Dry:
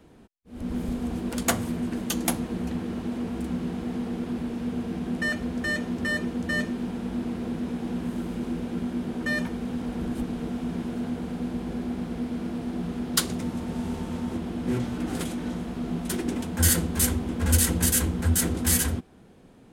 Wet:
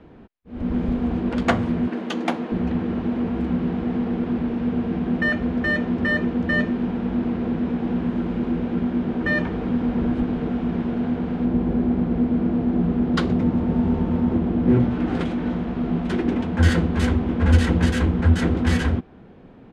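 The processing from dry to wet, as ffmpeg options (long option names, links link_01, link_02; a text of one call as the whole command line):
ffmpeg -i in.wav -filter_complex "[0:a]asettb=1/sr,asplit=3[link_01][link_02][link_03];[link_01]atrim=end=1.884[link_04];[link_02]atrim=start=1.88:end=2.52,asetpts=PTS-STARTPTS,afade=type=in:duration=0.004:curve=qsin,afade=type=out:start_time=0.636:duration=0.004:curve=qsin,highpass=280[link_05];[link_03]atrim=start=2.516[link_06];[link_04][link_05]acrossfade=duration=0.004:curve1=hsin:curve2=qsin[link_07];[link_07][link_06]acrossfade=duration=0.004:curve1=qsin:curve2=hsin,asplit=2[link_08][link_09];[link_09]afade=type=in:start_time=8.8:duration=0.01,afade=type=out:start_time=9.25:duration=0.01,aecho=0:1:440|880|1320|1760|2200|2640|3080|3520|3960|4400|4840|5280:0.630957|0.44167|0.309169|0.216418|0.151493|0.106045|0.0742315|0.0519621|0.0363734|0.0254614|0.017823|0.0124761[link_10];[link_08][link_10]amix=inputs=2:normalize=0,asettb=1/sr,asplit=3[link_11][link_12][link_13];[link_11]atrim=end=11.454[link_14];[link_12]atrim=start=11.45:end=14.91,asetpts=PTS-STARTPTS,afade=type=in:duration=0.004:curve=qsin,afade=type=out:start_time=3.456:duration=0.004:curve=qsin,tiltshelf=frequency=880:gain=4[link_15];[link_13]atrim=start=14.906[link_16];[link_14][link_15]acrossfade=duration=0.004:curve1=hsin:curve2=qsin[link_17];[link_17][link_16]acrossfade=duration=0.004:curve1=qsin:curve2=hsin,lowpass=3100,aemphasis=mode=reproduction:type=cd,volume=6.5dB" out.wav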